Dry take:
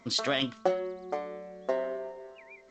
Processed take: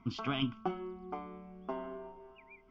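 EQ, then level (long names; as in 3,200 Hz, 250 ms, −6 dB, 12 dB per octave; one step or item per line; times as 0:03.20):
low-pass filter 4,100 Hz 24 dB per octave
spectral tilt −2 dB per octave
phaser with its sweep stopped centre 2,700 Hz, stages 8
−1.5 dB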